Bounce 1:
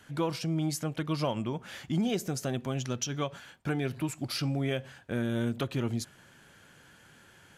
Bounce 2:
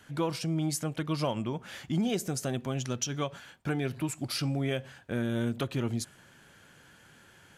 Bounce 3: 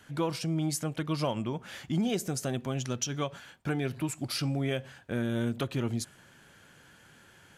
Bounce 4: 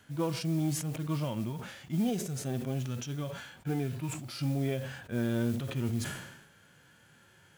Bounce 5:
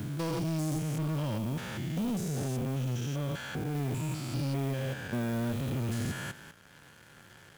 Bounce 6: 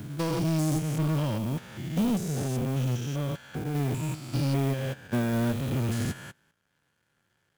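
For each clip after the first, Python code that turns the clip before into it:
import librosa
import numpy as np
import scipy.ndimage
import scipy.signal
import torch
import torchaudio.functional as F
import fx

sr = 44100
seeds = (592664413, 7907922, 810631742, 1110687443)

y1 = fx.dynamic_eq(x, sr, hz=8900.0, q=1.7, threshold_db=-54.0, ratio=4.0, max_db=5)
y2 = y1
y3 = fx.hpss(y2, sr, part='percussive', gain_db=-16)
y3 = fx.mod_noise(y3, sr, seeds[0], snr_db=23)
y3 = fx.sustainer(y3, sr, db_per_s=58.0)
y4 = fx.spec_steps(y3, sr, hold_ms=200)
y4 = fx.leveller(y4, sr, passes=3)
y4 = fx.band_squash(y4, sr, depth_pct=40)
y4 = F.gain(torch.from_numpy(y4), -5.5).numpy()
y5 = fx.upward_expand(y4, sr, threshold_db=-47.0, expansion=2.5)
y5 = F.gain(torch.from_numpy(y5), 7.5).numpy()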